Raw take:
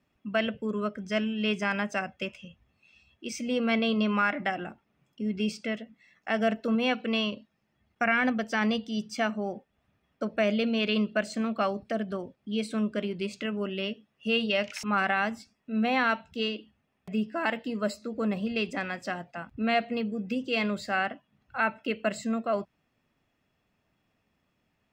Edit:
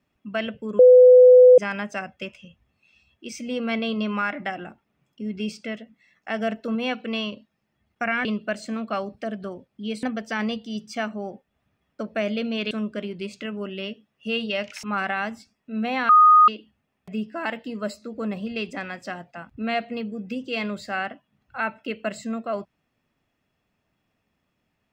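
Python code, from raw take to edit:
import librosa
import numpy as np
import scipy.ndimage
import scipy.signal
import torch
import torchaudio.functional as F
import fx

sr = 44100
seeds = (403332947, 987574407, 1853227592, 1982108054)

y = fx.edit(x, sr, fx.bleep(start_s=0.79, length_s=0.79, hz=502.0, db=-7.0),
    fx.move(start_s=10.93, length_s=1.78, to_s=8.25),
    fx.bleep(start_s=16.09, length_s=0.39, hz=1240.0, db=-9.5), tone=tone)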